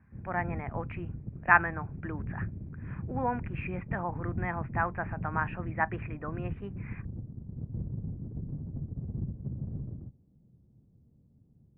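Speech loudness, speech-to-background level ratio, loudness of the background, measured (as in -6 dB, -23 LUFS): -33.0 LUFS, 6.5 dB, -39.5 LUFS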